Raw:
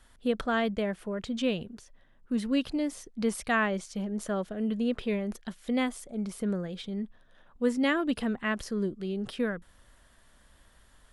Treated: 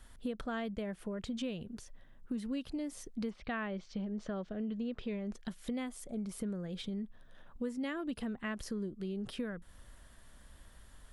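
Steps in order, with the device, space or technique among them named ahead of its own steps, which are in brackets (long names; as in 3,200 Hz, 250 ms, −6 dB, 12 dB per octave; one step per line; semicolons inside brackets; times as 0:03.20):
0:03.29–0:05.36: low-pass filter 3,800 Hz → 7,700 Hz 24 dB per octave
ASMR close-microphone chain (low-shelf EQ 250 Hz +6 dB; downward compressor 4 to 1, threshold −36 dBFS, peak gain reduction 14.5 dB; high-shelf EQ 8,800 Hz +4.5 dB)
level −1 dB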